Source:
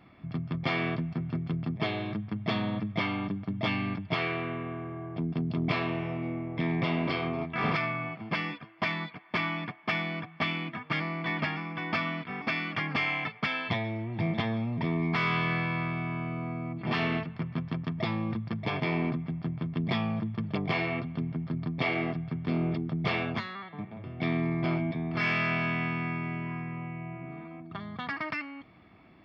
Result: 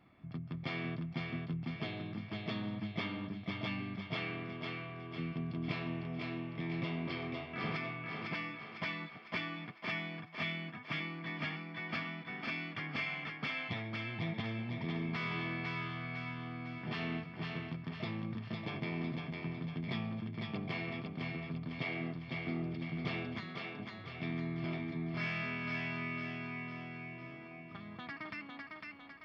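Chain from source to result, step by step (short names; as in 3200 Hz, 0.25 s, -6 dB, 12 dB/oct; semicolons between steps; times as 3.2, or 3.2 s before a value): dynamic EQ 870 Hz, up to -5 dB, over -44 dBFS, Q 0.74; on a send: thinning echo 0.503 s, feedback 52%, high-pass 300 Hz, level -3 dB; on the sum: gain -8.5 dB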